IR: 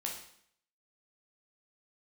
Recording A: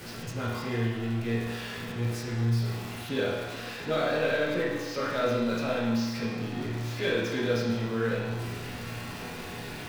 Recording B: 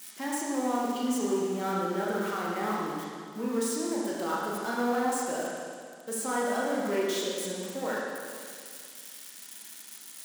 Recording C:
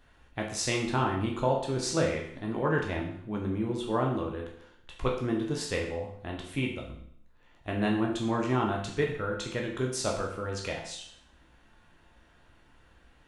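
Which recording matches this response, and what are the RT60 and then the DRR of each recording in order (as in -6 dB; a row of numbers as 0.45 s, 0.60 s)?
C; 1.2 s, 2.1 s, 0.65 s; -10.0 dB, -5.0 dB, -1.5 dB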